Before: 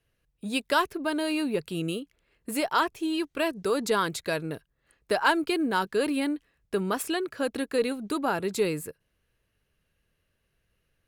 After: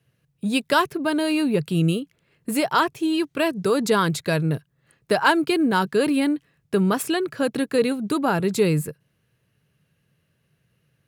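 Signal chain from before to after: high-pass 100 Hz 12 dB/octave; peaking EQ 140 Hz +13.5 dB 0.94 oct; trim +4.5 dB

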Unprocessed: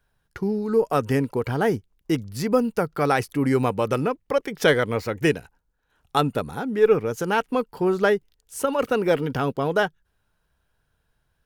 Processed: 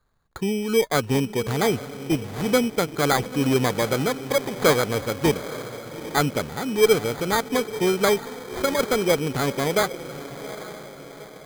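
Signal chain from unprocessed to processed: echo that smears into a reverb 833 ms, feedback 48%, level -13 dB; sample-and-hold 16×

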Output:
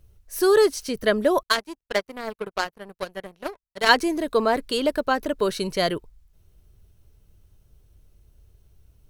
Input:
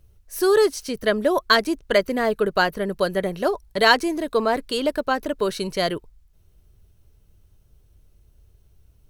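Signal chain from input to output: 1.43–3.89 s: power-law waveshaper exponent 2

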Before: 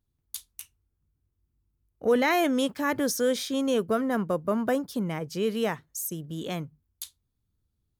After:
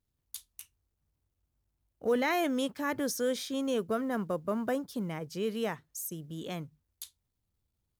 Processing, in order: companded quantiser 8-bit; trim -5.5 dB

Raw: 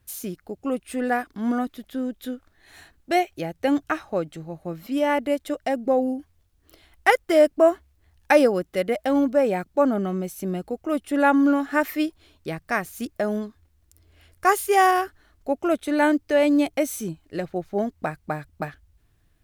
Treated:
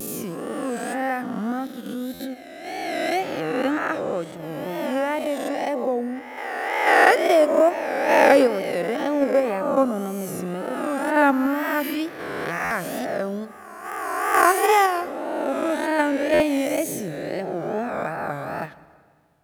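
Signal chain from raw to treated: reverse spectral sustain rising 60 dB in 1.90 s; high-pass 100 Hz 12 dB/octave; in parallel at -1 dB: level held to a coarse grid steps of 16 dB; on the sum: wow and flutter 110 cents; on a send at -18 dB: reverberation RT60 1.9 s, pre-delay 81 ms; on the sum: buffer glitch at 2.13/12.64/16.33 s, samples 512, times 5; trim -6 dB

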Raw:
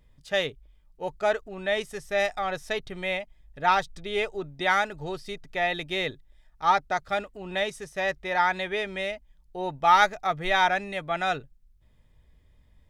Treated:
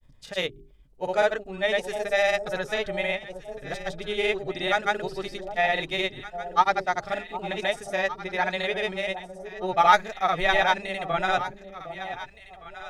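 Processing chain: hum notches 50/100/150/200/250/300/350/400 Hz; granulator 100 ms, pitch spread up and down by 0 st; echo whose repeats swap between lows and highs 759 ms, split 830 Hz, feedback 50%, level -9 dB; trim +3 dB

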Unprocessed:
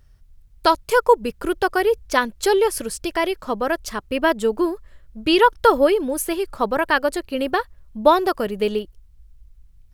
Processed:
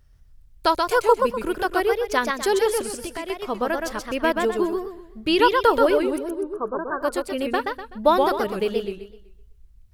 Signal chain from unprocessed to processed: 2.84–3.30 s: compression 5:1, threshold -26 dBFS, peak gain reduction 9.5 dB; 6.18–7.01 s: rippled Chebyshev low-pass 1.6 kHz, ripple 9 dB; modulated delay 126 ms, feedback 35%, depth 165 cents, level -4 dB; trim -3.5 dB

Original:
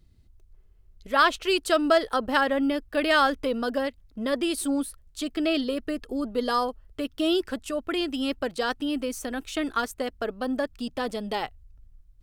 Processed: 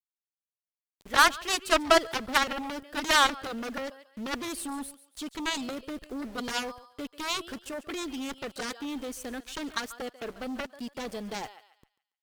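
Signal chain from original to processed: small samples zeroed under -42 dBFS; thinning echo 141 ms, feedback 35%, high-pass 760 Hz, level -16 dB; Chebyshev shaper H 3 -29 dB, 7 -13 dB, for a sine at -7.5 dBFS

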